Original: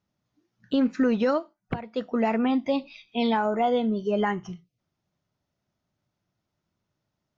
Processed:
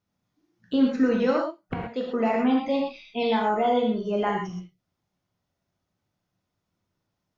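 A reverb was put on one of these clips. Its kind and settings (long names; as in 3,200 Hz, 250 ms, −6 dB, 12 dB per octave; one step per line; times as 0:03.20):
reverb whose tail is shaped and stops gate 150 ms flat, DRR −1 dB
level −2.5 dB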